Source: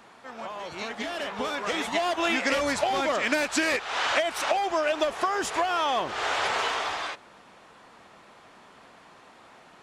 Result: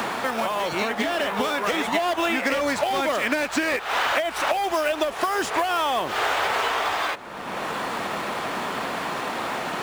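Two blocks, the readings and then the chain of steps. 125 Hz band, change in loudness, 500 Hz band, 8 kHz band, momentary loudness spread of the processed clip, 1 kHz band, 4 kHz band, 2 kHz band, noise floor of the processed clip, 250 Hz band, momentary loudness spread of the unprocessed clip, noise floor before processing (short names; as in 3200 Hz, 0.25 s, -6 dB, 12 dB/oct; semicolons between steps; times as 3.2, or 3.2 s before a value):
+7.5 dB, +2.5 dB, +3.5 dB, +1.5 dB, 5 LU, +4.5 dB, +2.5 dB, +3.5 dB, -33 dBFS, +4.5 dB, 11 LU, -53 dBFS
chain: in parallel at -8 dB: sample-rate reducer 11000 Hz, jitter 20%; on the sum: three-band squash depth 100%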